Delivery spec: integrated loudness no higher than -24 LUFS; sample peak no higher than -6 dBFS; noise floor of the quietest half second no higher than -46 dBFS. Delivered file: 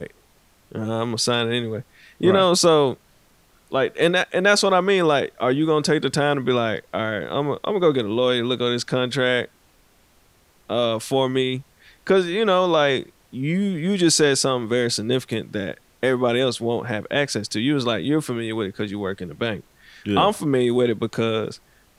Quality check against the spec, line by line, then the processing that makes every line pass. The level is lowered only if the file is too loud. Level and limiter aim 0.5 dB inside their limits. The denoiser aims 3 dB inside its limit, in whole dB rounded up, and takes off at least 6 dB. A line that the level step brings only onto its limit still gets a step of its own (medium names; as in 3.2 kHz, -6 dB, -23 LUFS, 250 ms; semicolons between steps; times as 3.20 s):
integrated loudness -21.0 LUFS: fail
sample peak -5.5 dBFS: fail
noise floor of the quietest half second -57 dBFS: pass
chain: trim -3.5 dB